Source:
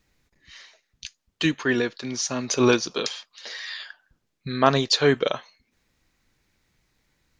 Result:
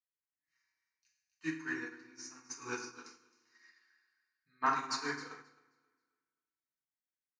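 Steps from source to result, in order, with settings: HPF 880 Hz 6 dB/oct; fixed phaser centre 1400 Hz, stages 4; feedback echo 0.266 s, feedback 36%, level -9 dB; reverb RT60 1.3 s, pre-delay 3 ms, DRR -4.5 dB; upward expander 2.5:1, over -36 dBFS; gain -7.5 dB

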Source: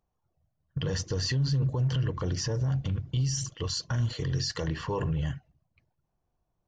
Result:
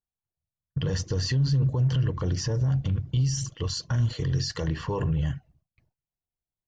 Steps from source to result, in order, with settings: gate with hold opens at -56 dBFS; low shelf 270 Hz +4.5 dB

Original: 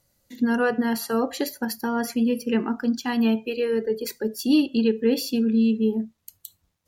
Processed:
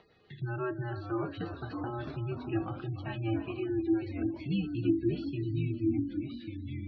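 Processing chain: resonator 440 Hz, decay 0.2 s, harmonics all, mix 80%; echoes that change speed 0.492 s, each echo -2 st, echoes 3, each echo -6 dB; thinning echo 0.302 s, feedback 69%, high-pass 380 Hz, level -11 dB; spectral gate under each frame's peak -30 dB strong; upward compressor, threshold -37 dBFS; mistuned SSB -110 Hz 210–3600 Hz

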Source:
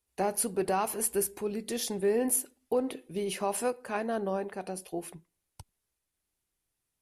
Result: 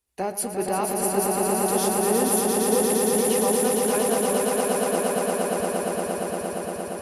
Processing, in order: swelling echo 0.116 s, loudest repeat 8, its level -4 dB; gain +1.5 dB

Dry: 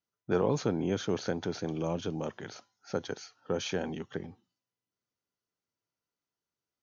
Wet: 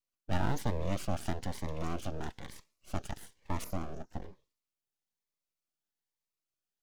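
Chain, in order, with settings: 3.64–4.22 Chebyshev band-stop 1200–5000 Hz, order 3; full-wave rectifier; cascading phaser rising 1.1 Hz

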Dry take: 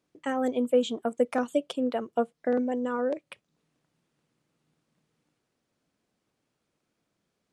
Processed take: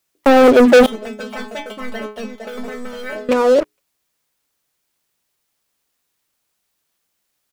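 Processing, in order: median filter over 9 samples; HPF 86 Hz 12 dB/oct; echo 0.46 s -10 dB; gate -49 dBFS, range -12 dB; bell 490 Hz +9.5 dB 2.3 oct; notches 60/120/180/240/300/360/420 Hz; sample leveller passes 5; 0.86–3.29 metallic resonator 210 Hz, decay 0.34 s, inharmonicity 0.002; requantised 12-bit, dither triangular

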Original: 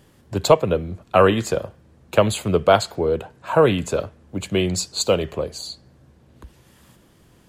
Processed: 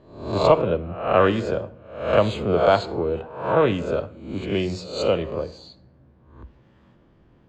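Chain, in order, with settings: spectral swells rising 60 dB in 0.63 s; air absorption 200 m; reverb RT60 0.70 s, pre-delay 3 ms, DRR 14.5 dB; mismatched tape noise reduction decoder only; gain -3.5 dB

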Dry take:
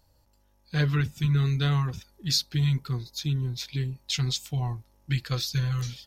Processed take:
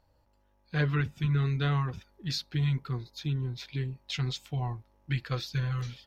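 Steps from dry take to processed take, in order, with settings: tone controls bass -4 dB, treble -15 dB

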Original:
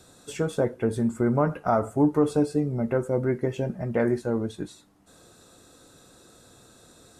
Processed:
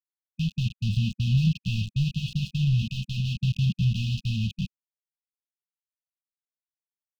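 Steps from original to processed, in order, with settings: 2.82–3.4 HPF 150 Hz 12 dB/oct; AGC gain up to 13 dB; soft clip -10 dBFS, distortion -13 dB; bit-crush 4-bit; brick-wall FIR band-stop 210–2500 Hz; air absorption 250 m

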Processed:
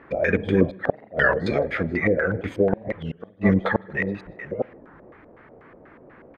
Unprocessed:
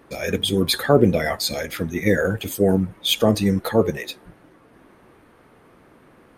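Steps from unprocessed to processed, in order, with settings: reverse delay 0.421 s, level -12 dB; 1.54–2.73 compressor, threshold -21 dBFS, peak gain reduction 9 dB; flipped gate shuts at -7 dBFS, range -41 dB; LFO low-pass square 4.1 Hz 600–1900 Hz; outdoor echo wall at 27 m, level -29 dB; on a send at -24 dB: reverb RT60 1.5 s, pre-delay 47 ms; on the sum: record warp 33 1/3 rpm, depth 250 cents; gain +1 dB

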